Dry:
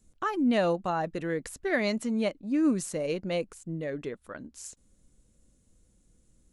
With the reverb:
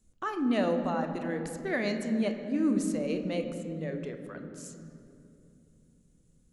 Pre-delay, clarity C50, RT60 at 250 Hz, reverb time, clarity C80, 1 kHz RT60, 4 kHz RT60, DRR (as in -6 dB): 3 ms, 7.5 dB, 4.2 s, 2.8 s, 8.5 dB, 2.5 s, 1.7 s, 5.5 dB